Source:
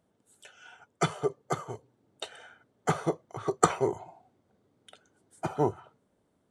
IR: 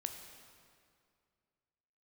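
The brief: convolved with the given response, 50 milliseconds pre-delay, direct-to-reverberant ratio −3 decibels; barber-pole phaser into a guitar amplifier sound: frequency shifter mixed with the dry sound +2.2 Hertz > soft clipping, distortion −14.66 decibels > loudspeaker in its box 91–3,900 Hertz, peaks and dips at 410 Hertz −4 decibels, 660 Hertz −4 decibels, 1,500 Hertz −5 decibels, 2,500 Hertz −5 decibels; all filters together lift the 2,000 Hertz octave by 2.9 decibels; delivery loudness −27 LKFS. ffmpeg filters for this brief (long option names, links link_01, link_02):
-filter_complex "[0:a]equalizer=frequency=2000:width_type=o:gain=8.5,asplit=2[link_01][link_02];[1:a]atrim=start_sample=2205,adelay=50[link_03];[link_02][link_03]afir=irnorm=-1:irlink=0,volume=4dB[link_04];[link_01][link_04]amix=inputs=2:normalize=0,asplit=2[link_05][link_06];[link_06]afreqshift=2.2[link_07];[link_05][link_07]amix=inputs=2:normalize=1,asoftclip=threshold=-15.5dB,highpass=91,equalizer=frequency=410:width_type=q:width=4:gain=-4,equalizer=frequency=660:width_type=q:width=4:gain=-4,equalizer=frequency=1500:width_type=q:width=4:gain=-5,equalizer=frequency=2500:width_type=q:width=4:gain=-5,lowpass=frequency=3900:width=0.5412,lowpass=frequency=3900:width=1.3066,volume=6.5dB"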